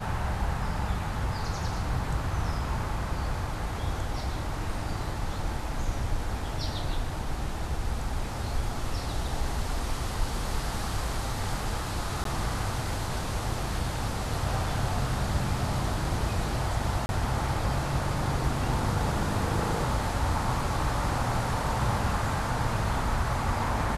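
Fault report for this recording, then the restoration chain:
0:12.24–0:12.25: drop-out 13 ms
0:17.06–0:17.09: drop-out 31 ms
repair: repair the gap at 0:12.24, 13 ms
repair the gap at 0:17.06, 31 ms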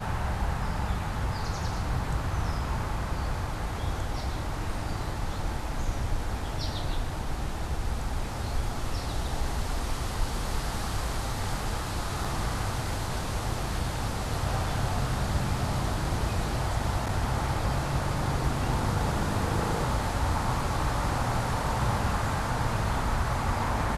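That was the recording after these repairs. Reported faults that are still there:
none of them is left

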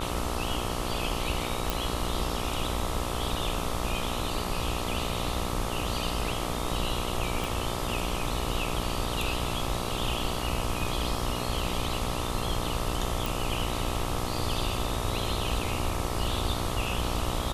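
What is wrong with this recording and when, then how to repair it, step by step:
mains buzz 60 Hz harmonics 22 −34 dBFS
0:01.70: click
0:07.44: click
0:13.26: click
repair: click removal
hum removal 60 Hz, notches 22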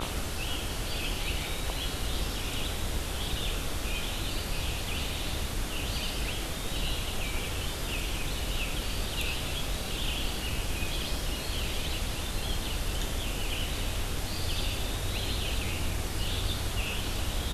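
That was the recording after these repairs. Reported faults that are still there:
0:07.44: click

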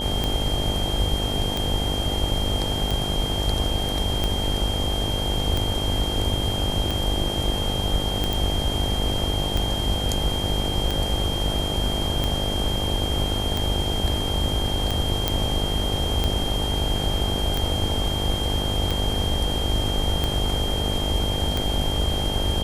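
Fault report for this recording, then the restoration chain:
mains buzz 50 Hz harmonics 18 −29 dBFS
scratch tick 45 rpm −10 dBFS
whistle 3,200 Hz −28 dBFS
0:08.33: click
0:15.28: click −5 dBFS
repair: click removal
hum removal 50 Hz, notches 18
notch filter 3,200 Hz, Q 30

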